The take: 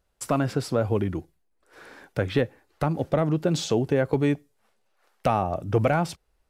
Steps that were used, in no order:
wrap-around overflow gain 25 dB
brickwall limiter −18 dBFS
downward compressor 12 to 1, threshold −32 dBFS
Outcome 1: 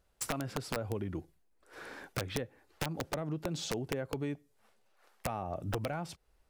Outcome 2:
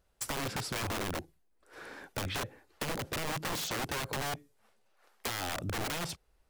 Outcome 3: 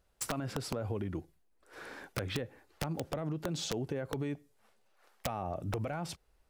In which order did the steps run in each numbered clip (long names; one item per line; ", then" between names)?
downward compressor, then brickwall limiter, then wrap-around overflow
brickwall limiter, then wrap-around overflow, then downward compressor
brickwall limiter, then downward compressor, then wrap-around overflow